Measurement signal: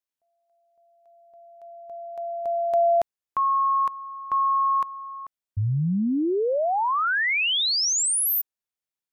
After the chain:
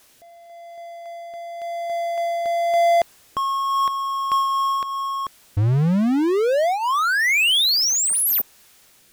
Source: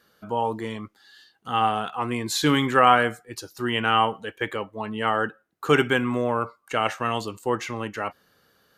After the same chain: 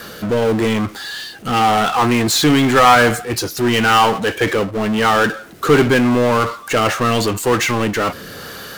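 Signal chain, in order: rotary speaker horn 0.9 Hz; power-law curve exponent 0.5; gain +3 dB

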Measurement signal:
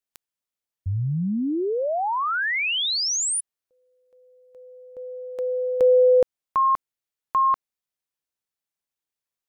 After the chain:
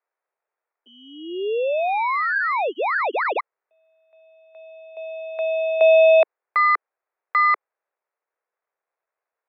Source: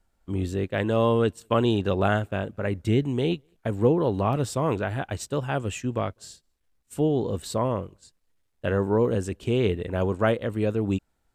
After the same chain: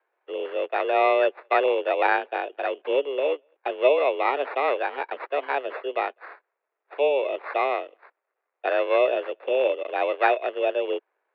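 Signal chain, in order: sample-and-hold 15×; mistuned SSB +140 Hz 270–2900 Hz; gain +3 dB

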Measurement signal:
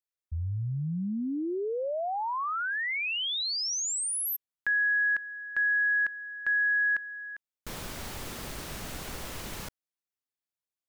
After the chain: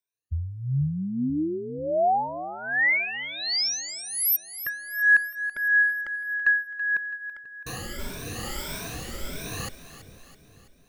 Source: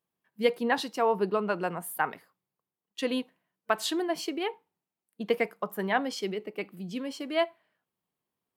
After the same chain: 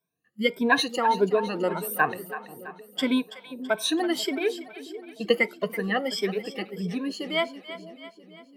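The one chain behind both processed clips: moving spectral ripple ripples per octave 1.6, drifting +1.6 Hz, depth 22 dB; rotary speaker horn 0.9 Hz; split-band echo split 570 Hz, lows 0.487 s, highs 0.33 s, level -13 dB; gain +2 dB

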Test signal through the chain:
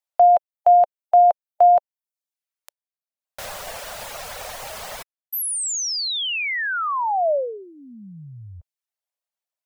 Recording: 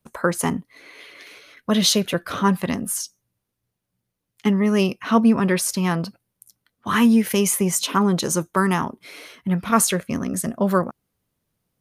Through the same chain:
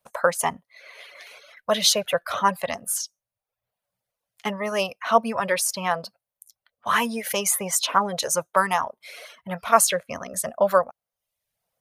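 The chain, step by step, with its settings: resonant low shelf 440 Hz -10.5 dB, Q 3; reverb removal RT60 0.69 s

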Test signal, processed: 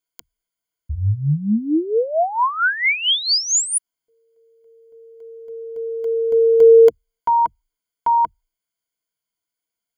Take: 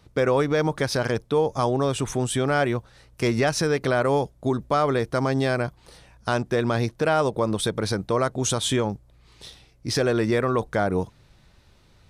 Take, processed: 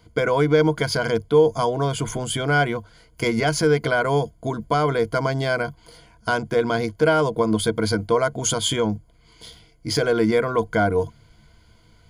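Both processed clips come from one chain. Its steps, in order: ripple EQ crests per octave 1.8, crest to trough 14 dB

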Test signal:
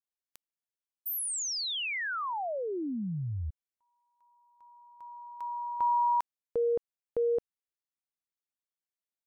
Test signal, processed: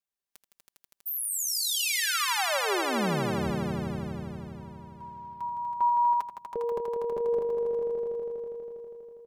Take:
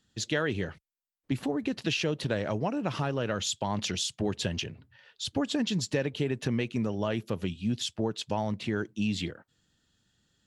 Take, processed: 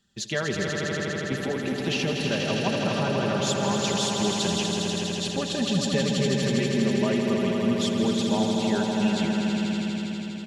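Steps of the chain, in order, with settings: comb 5.1 ms, depth 61%; swelling echo 81 ms, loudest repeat 5, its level -6.5 dB

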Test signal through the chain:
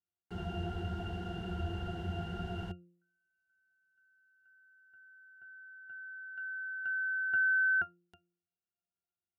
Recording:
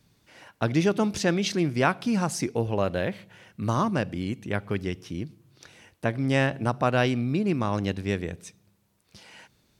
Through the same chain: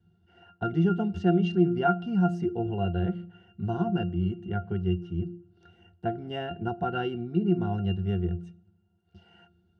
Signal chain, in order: octave resonator F, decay 0.15 s; de-hum 174.5 Hz, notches 3; gain +9 dB

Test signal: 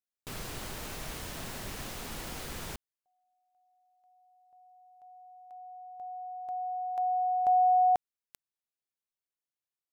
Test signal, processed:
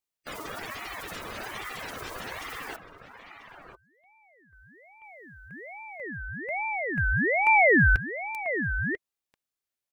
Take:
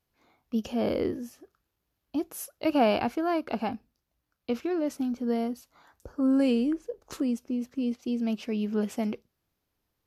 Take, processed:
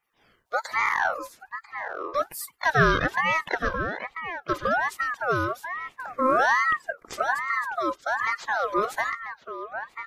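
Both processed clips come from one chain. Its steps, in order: bin magnitudes rounded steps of 30 dB; HPF 130 Hz; comb 2.5 ms, depth 35%; outdoor echo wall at 170 m, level -9 dB; ring modulator with a swept carrier 1200 Hz, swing 35%, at 1.2 Hz; gain +6.5 dB

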